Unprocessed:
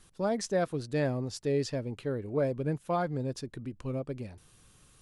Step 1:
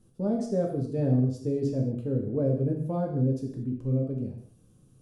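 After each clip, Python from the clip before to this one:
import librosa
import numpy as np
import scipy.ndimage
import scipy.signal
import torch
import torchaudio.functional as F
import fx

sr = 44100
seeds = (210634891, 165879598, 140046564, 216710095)

y = fx.graphic_eq(x, sr, hz=(125, 250, 500, 1000, 2000, 4000, 8000), db=(12, 8, 5, -5, -12, -7, -5))
y = fx.rev_gated(y, sr, seeds[0], gate_ms=250, shape='falling', drr_db=0.0)
y = y * librosa.db_to_amplitude(-7.0)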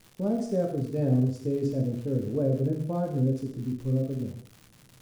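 y = fx.dmg_crackle(x, sr, seeds[1], per_s=320.0, level_db=-41.0)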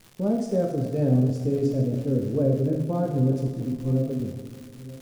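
y = fx.reverse_delay_fb(x, sr, ms=145, feedback_pct=63, wet_db=-12.0)
y = y + 10.0 ** (-17.0 / 20.0) * np.pad(y, (int(931 * sr / 1000.0), 0))[:len(y)]
y = y * librosa.db_to_amplitude(3.0)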